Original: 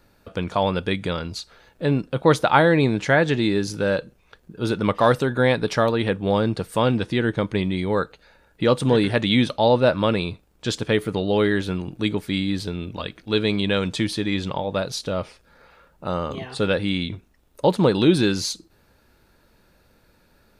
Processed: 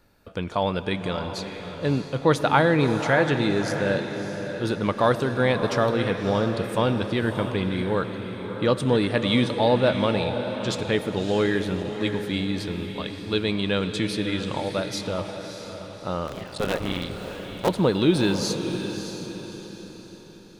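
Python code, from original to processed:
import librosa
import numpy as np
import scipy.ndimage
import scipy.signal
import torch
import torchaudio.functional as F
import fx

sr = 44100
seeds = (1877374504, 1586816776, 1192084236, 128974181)

y = fx.cycle_switch(x, sr, every=3, mode='muted', at=(16.24, 17.68), fade=0.02)
y = fx.echo_diffused(y, sr, ms=619, feedback_pct=41, wet_db=-8.5)
y = fx.rev_freeverb(y, sr, rt60_s=5.0, hf_ratio=0.95, predelay_ms=45, drr_db=12.0)
y = y * librosa.db_to_amplitude(-3.0)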